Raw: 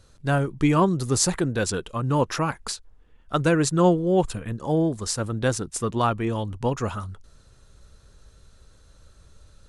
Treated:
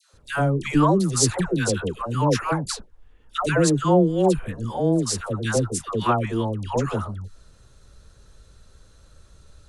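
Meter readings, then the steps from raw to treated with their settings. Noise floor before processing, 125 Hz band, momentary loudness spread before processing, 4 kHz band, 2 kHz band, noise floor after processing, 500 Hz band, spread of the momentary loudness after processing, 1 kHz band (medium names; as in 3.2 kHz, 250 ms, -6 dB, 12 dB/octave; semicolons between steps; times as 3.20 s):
-55 dBFS, +1.5 dB, 10 LU, +1.5 dB, +1.5 dB, -54 dBFS, +1.5 dB, 12 LU, +1.5 dB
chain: phase dispersion lows, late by 137 ms, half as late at 860 Hz; trim +1.5 dB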